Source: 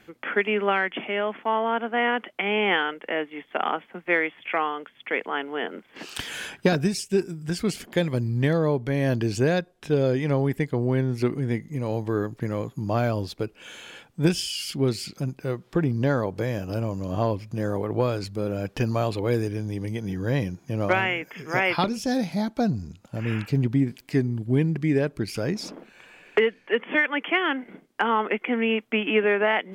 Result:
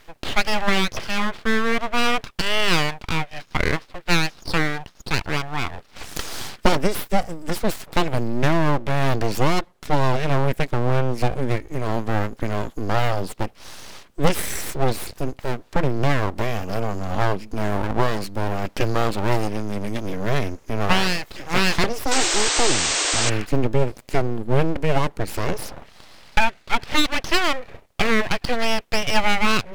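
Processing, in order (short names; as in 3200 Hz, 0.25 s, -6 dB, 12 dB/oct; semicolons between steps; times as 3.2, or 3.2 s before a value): full-wave rectifier; painted sound noise, 22.11–23.3, 280–8700 Hz -28 dBFS; gain +6 dB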